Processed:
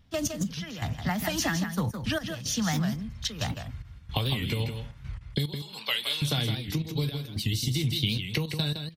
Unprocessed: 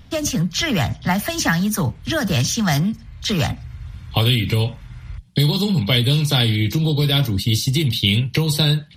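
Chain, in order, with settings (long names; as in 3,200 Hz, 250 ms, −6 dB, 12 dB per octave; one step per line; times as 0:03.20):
0:05.56–0:06.22: high-pass filter 940 Hz 12 dB per octave
downward compressor, threshold −21 dBFS, peak gain reduction 9 dB
gate pattern ".x.x..xxxxxx" 110 BPM −12 dB
on a send: single-tap delay 163 ms −7.5 dB
on the sum: wow of a warped record 78 rpm, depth 160 cents
level −4 dB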